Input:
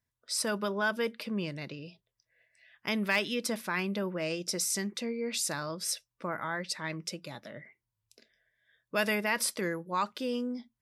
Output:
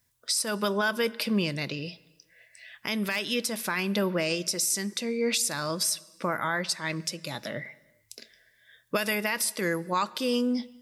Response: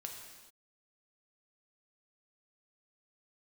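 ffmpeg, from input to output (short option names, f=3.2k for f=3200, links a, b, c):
-filter_complex "[0:a]highshelf=f=3.8k:g=10.5,alimiter=level_in=2dB:limit=-24dB:level=0:latency=1:release=436,volume=-2dB,asplit=2[a][b];[1:a]atrim=start_sample=2205,highshelf=f=7.9k:g=-9[c];[b][c]afir=irnorm=-1:irlink=0,volume=-11.5dB[d];[a][d]amix=inputs=2:normalize=0,volume=8.5dB"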